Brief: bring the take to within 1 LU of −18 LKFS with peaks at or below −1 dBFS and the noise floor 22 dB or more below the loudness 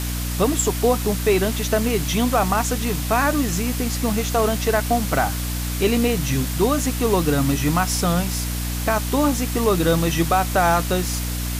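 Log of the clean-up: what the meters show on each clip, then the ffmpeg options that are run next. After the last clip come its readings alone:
mains hum 60 Hz; hum harmonics up to 300 Hz; level of the hum −24 dBFS; background noise floor −25 dBFS; target noise floor −43 dBFS; integrated loudness −20.5 LKFS; sample peak −6.0 dBFS; target loudness −18.0 LKFS
→ -af "bandreject=frequency=60:width_type=h:width=6,bandreject=frequency=120:width_type=h:width=6,bandreject=frequency=180:width_type=h:width=6,bandreject=frequency=240:width_type=h:width=6,bandreject=frequency=300:width_type=h:width=6"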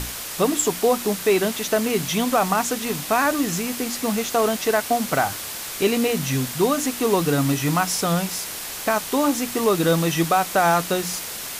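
mains hum none found; background noise floor −32 dBFS; target noise floor −44 dBFS
→ -af "afftdn=noise_reduction=12:noise_floor=-32"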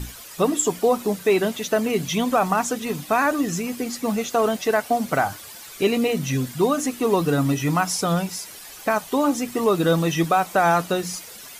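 background noise floor −41 dBFS; target noise floor −44 dBFS
→ -af "afftdn=noise_reduction=6:noise_floor=-41"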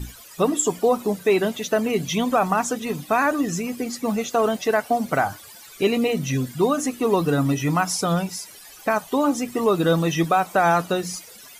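background noise floor −44 dBFS; integrated loudness −22.0 LKFS; sample peak −8.0 dBFS; target loudness −18.0 LKFS
→ -af "volume=4dB"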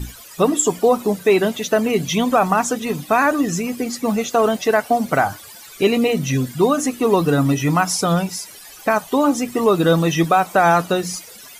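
integrated loudness −18.0 LKFS; sample peak −4.0 dBFS; background noise floor −40 dBFS

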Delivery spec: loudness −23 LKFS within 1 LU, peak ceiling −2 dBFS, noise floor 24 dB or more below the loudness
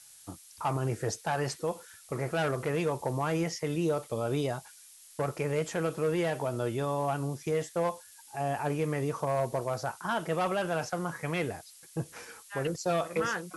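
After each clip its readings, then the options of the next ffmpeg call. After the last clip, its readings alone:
background noise floor −54 dBFS; target noise floor −56 dBFS; integrated loudness −32.0 LKFS; sample peak −19.5 dBFS; target loudness −23.0 LKFS
→ -af "afftdn=noise_reduction=6:noise_floor=-54"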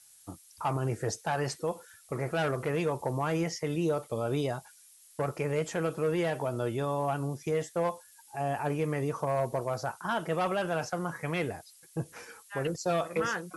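background noise floor −58 dBFS; integrated loudness −32.0 LKFS; sample peak −20.0 dBFS; target loudness −23.0 LKFS
→ -af "volume=9dB"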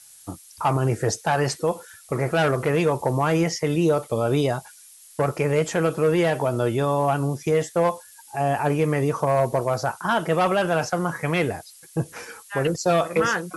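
integrated loudness −23.0 LKFS; sample peak −11.0 dBFS; background noise floor −49 dBFS

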